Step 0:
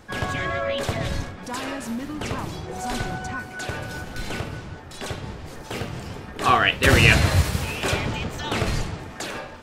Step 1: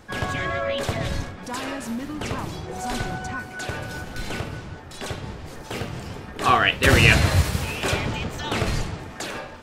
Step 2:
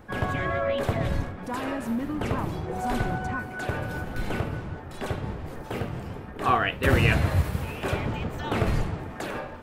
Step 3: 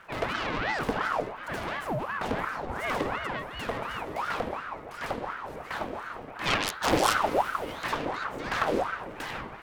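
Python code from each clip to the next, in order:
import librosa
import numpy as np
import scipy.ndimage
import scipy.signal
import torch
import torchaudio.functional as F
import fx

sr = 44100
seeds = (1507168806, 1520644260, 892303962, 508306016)

y1 = x
y2 = fx.peak_eq(y1, sr, hz=5800.0, db=-13.0, octaves=2.2)
y2 = fx.rider(y2, sr, range_db=4, speed_s=2.0)
y2 = y2 * librosa.db_to_amplitude(-2.0)
y3 = fx.self_delay(y2, sr, depth_ms=0.5)
y3 = fx.dmg_crackle(y3, sr, seeds[0], per_s=410.0, level_db=-55.0)
y3 = fx.ring_lfo(y3, sr, carrier_hz=900.0, swing_pct=60, hz=2.8)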